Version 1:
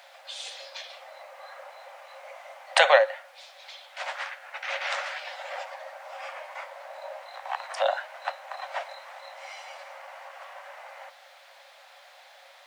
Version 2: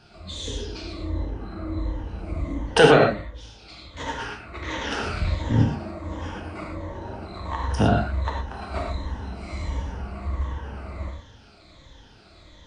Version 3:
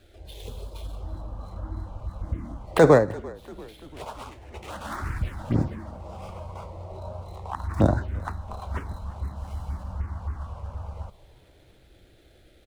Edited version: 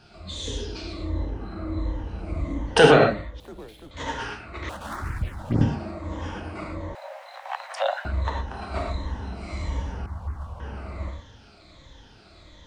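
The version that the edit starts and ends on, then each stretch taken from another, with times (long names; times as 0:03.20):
2
0:03.40–0:03.91: punch in from 3
0:04.69–0:05.61: punch in from 3
0:06.95–0:08.05: punch in from 1
0:10.06–0:10.60: punch in from 3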